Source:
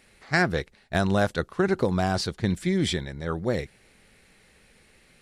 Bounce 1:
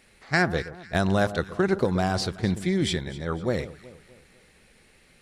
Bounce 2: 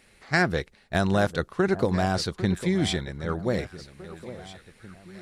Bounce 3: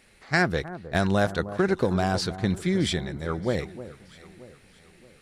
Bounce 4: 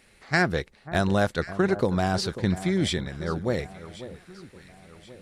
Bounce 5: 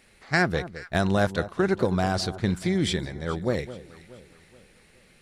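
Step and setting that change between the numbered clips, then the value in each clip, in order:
echo whose repeats swap between lows and highs, time: 125 ms, 801 ms, 312 ms, 541 ms, 212 ms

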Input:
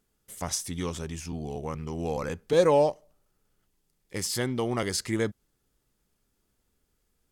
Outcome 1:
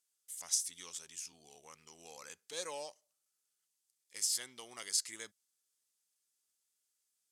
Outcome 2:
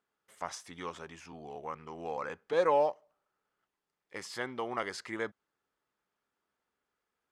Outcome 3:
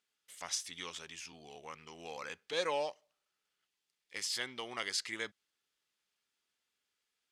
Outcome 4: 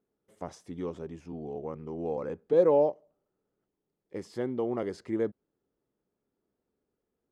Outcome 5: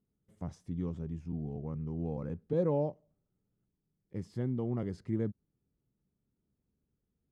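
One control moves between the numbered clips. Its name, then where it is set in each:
band-pass filter, frequency: 7.9 kHz, 1.2 kHz, 3 kHz, 410 Hz, 150 Hz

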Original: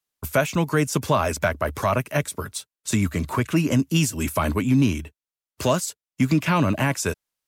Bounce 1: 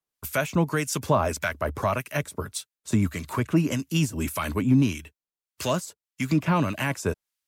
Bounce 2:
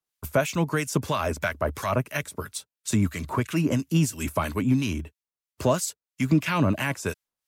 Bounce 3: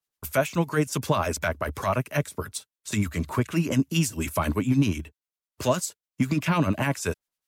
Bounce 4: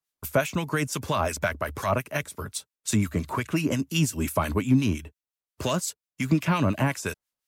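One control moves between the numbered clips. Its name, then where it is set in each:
harmonic tremolo, rate: 1.7 Hz, 3 Hz, 10 Hz, 5.7 Hz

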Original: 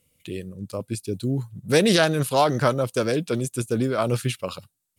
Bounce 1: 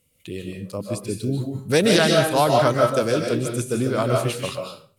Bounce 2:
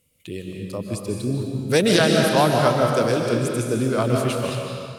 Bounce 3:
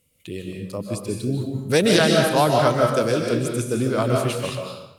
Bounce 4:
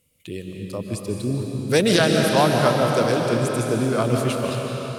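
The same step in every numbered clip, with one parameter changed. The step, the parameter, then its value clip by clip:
algorithmic reverb, RT60: 0.41 s, 2.2 s, 0.87 s, 4.6 s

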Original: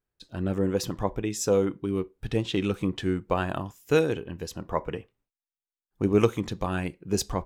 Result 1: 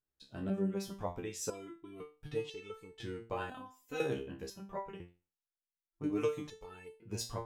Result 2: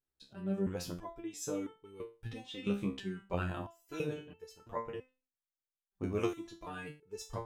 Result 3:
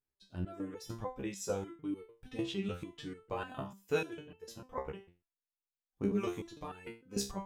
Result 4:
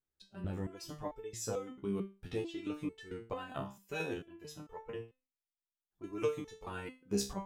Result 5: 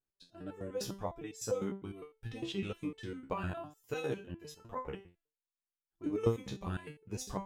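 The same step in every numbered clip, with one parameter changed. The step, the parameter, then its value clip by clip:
resonator arpeggio, rate: 2 Hz, 3 Hz, 6.7 Hz, 4.5 Hz, 9.9 Hz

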